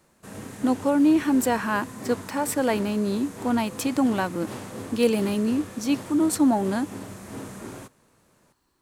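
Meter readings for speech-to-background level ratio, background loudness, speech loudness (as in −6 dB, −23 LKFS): 14.0 dB, −38.5 LKFS, −24.5 LKFS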